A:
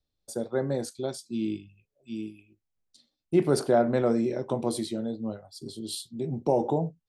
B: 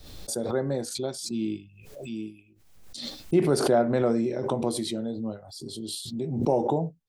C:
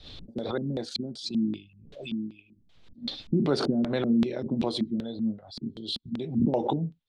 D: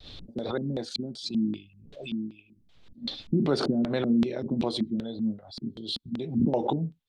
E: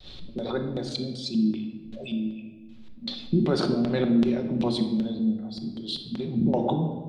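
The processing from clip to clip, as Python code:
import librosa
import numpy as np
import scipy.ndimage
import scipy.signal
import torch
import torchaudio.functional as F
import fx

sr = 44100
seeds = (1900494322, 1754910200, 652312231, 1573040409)

y1 = fx.pre_swell(x, sr, db_per_s=54.0)
y2 = fx.hpss(y1, sr, part='harmonic', gain_db=-5)
y2 = fx.filter_lfo_lowpass(y2, sr, shape='square', hz=2.6, low_hz=230.0, high_hz=3600.0, q=3.1)
y3 = fx.vibrato(y2, sr, rate_hz=0.53, depth_cents=14.0)
y4 = fx.room_shoebox(y3, sr, seeds[0], volume_m3=1100.0, walls='mixed', distance_m=1.0)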